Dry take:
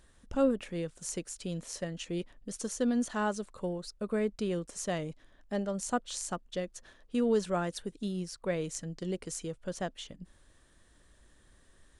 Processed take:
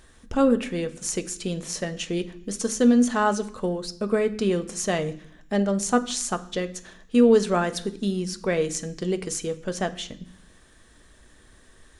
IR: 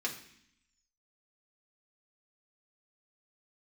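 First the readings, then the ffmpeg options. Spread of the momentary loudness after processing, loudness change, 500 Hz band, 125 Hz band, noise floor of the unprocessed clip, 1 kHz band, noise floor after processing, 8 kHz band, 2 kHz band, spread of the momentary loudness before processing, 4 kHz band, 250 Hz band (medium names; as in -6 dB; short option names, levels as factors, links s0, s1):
11 LU, +9.5 dB, +9.5 dB, +7.5 dB, -63 dBFS, +10.0 dB, -54 dBFS, +9.5 dB, +10.0 dB, 10 LU, +10.0 dB, +10.0 dB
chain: -filter_complex "[0:a]asplit=2[s0][s1];[1:a]atrim=start_sample=2205[s2];[s1][s2]afir=irnorm=-1:irlink=0,volume=0.473[s3];[s0][s3]amix=inputs=2:normalize=0,volume=2.11"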